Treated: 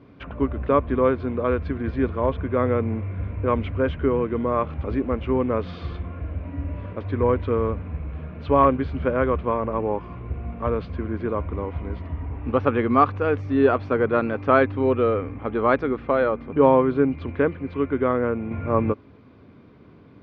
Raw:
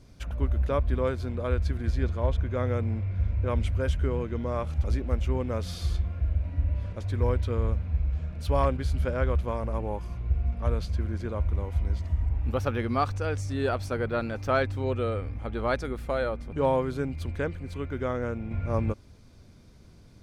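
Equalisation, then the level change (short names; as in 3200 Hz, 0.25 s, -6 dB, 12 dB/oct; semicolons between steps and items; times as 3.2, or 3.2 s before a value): speaker cabinet 120–2900 Hz, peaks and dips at 280 Hz +7 dB, 430 Hz +6 dB, 1100 Hz +7 dB; +5.5 dB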